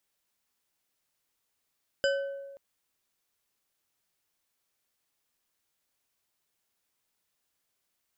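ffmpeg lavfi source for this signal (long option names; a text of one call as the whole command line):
ffmpeg -f lavfi -i "aevalsrc='0.0708*pow(10,-3*t/1.39)*sin(2*PI*554*t)+0.0447*pow(10,-3*t/0.683)*sin(2*PI*1527.4*t)+0.0282*pow(10,-3*t/0.427)*sin(2*PI*2993.8*t)+0.0178*pow(10,-3*t/0.3)*sin(2*PI*4948.9*t)+0.0112*pow(10,-3*t/0.227)*sin(2*PI*7390.4*t)':duration=0.53:sample_rate=44100" out.wav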